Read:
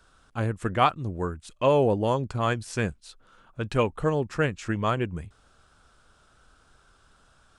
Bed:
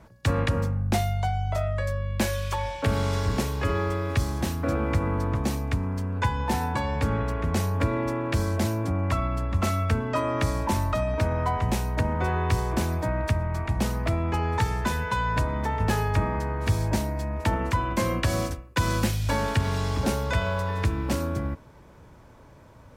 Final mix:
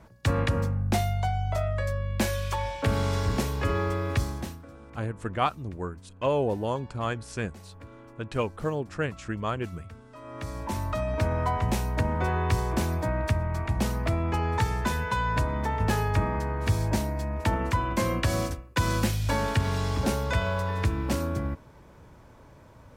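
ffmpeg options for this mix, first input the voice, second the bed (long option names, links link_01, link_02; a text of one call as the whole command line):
ffmpeg -i stem1.wav -i stem2.wav -filter_complex "[0:a]adelay=4600,volume=-4.5dB[link_01];[1:a]volume=20dB,afade=type=out:start_time=4.14:duration=0.52:silence=0.0891251,afade=type=in:start_time=10.16:duration=1.12:silence=0.0891251[link_02];[link_01][link_02]amix=inputs=2:normalize=0" out.wav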